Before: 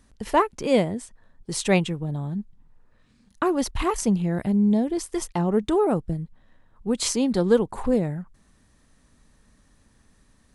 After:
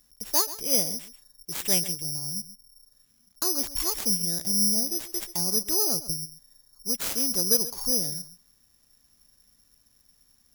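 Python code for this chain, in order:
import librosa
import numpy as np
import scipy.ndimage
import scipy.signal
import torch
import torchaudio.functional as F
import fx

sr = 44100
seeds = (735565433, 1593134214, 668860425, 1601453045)

p1 = x + fx.echo_single(x, sr, ms=133, db=-15.0, dry=0)
p2 = (np.kron(p1[::8], np.eye(8)[0]) * 8)[:len(p1)]
y = p2 * 10.0 ** (-13.0 / 20.0)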